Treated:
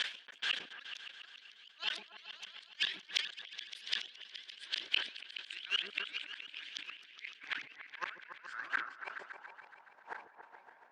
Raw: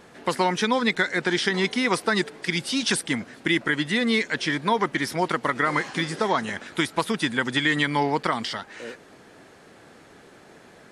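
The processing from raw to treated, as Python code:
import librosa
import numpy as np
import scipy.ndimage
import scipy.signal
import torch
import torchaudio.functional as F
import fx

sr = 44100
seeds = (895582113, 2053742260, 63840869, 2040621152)

y = fx.pitch_ramps(x, sr, semitones=9.0, every_ms=194)
y = scipy.signal.sosfilt(scipy.signal.butter(2, 8300.0, 'lowpass', fs=sr, output='sos'), y)
y = fx.over_compress(y, sr, threshold_db=-35.0, ratio=-1.0)
y = fx.gate_flip(y, sr, shuts_db=-24.0, range_db=-34)
y = fx.high_shelf(y, sr, hz=2100.0, db=9.0)
y = fx.echo_pitch(y, sr, ms=431, semitones=-2, count=3, db_per_echo=-3.0)
y = fx.peak_eq(y, sr, hz=1600.0, db=12.0, octaves=0.31)
y = fx.gate_flip(y, sr, shuts_db=-28.0, range_db=-36)
y = fx.filter_sweep_bandpass(y, sr, from_hz=3200.0, to_hz=890.0, start_s=6.81, end_s=9.37, q=4.5)
y = fx.echo_opening(y, sr, ms=141, hz=400, octaves=2, feedback_pct=70, wet_db=-6)
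y = fx.sustainer(y, sr, db_per_s=140.0)
y = y * 10.0 ** (18.0 / 20.0)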